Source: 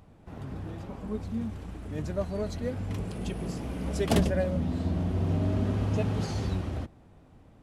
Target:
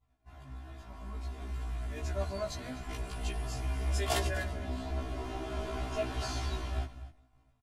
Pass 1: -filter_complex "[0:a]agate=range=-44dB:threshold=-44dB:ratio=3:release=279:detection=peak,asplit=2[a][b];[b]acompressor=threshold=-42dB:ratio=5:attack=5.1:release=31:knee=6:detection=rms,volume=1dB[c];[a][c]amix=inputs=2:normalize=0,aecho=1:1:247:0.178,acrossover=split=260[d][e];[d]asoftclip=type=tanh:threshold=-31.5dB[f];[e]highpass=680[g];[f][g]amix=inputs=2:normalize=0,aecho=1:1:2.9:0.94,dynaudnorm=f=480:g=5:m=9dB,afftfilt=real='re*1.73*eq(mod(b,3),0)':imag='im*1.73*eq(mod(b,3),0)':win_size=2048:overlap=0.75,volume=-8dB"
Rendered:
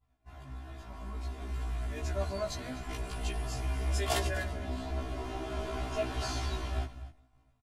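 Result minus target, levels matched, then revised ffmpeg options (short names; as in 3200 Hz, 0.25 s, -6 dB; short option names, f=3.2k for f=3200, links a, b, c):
compressor: peak gain reduction -9 dB
-filter_complex "[0:a]agate=range=-44dB:threshold=-44dB:ratio=3:release=279:detection=peak,asplit=2[a][b];[b]acompressor=threshold=-53.5dB:ratio=5:attack=5.1:release=31:knee=6:detection=rms,volume=1dB[c];[a][c]amix=inputs=2:normalize=0,aecho=1:1:247:0.178,acrossover=split=260[d][e];[d]asoftclip=type=tanh:threshold=-31.5dB[f];[e]highpass=680[g];[f][g]amix=inputs=2:normalize=0,aecho=1:1:2.9:0.94,dynaudnorm=f=480:g=5:m=9dB,afftfilt=real='re*1.73*eq(mod(b,3),0)':imag='im*1.73*eq(mod(b,3),0)':win_size=2048:overlap=0.75,volume=-8dB"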